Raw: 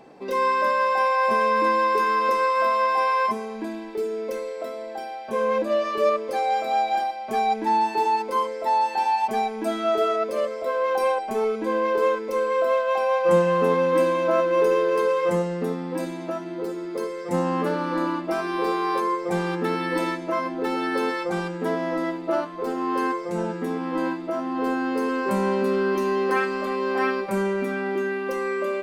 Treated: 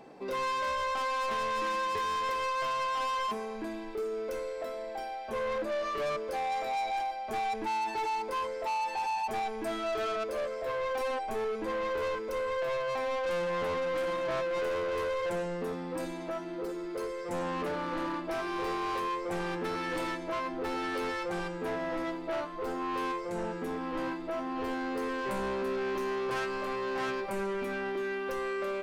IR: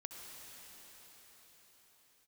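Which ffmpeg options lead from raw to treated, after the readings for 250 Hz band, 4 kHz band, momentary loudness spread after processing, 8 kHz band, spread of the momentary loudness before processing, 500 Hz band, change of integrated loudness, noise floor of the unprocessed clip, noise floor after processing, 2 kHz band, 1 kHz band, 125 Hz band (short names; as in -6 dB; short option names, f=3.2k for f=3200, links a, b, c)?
-10.5 dB, -4.0 dB, 5 LU, n/a, 9 LU, -10.0 dB, -9.5 dB, -34 dBFS, -39 dBFS, -7.5 dB, -9.5 dB, -11.0 dB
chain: -af "asubboost=boost=9:cutoff=60,asoftclip=type=tanh:threshold=-26.5dB,volume=-3dB"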